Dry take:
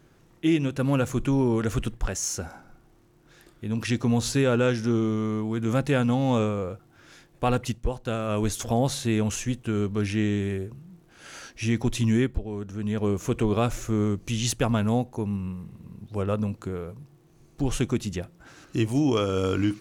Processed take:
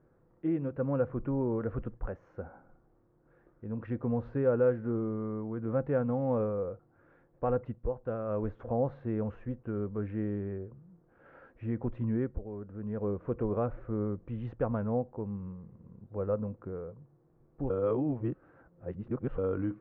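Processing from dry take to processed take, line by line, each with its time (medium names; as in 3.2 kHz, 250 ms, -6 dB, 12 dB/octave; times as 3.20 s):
17.70–19.38 s: reverse
whole clip: low-pass 1.5 kHz 24 dB/octave; peaking EQ 510 Hz +9 dB 0.32 oct; trim -9 dB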